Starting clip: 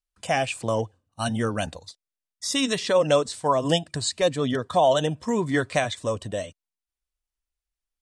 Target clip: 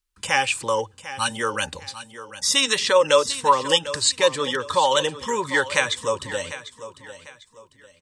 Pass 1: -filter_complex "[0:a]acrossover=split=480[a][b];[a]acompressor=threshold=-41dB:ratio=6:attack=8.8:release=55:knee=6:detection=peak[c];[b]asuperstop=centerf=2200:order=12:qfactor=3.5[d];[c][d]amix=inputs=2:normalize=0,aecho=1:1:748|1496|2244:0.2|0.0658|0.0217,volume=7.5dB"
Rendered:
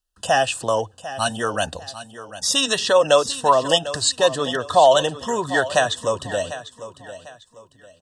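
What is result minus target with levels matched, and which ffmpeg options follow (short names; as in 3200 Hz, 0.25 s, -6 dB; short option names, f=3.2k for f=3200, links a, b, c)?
compressor: peak gain reduction -5.5 dB; 2000 Hz band -3.0 dB
-filter_complex "[0:a]acrossover=split=480[a][b];[a]acompressor=threshold=-47.5dB:ratio=6:attack=8.8:release=55:knee=6:detection=peak[c];[b]asuperstop=centerf=680:order=12:qfactor=3.5[d];[c][d]amix=inputs=2:normalize=0,aecho=1:1:748|1496|2244:0.2|0.0658|0.0217,volume=7.5dB"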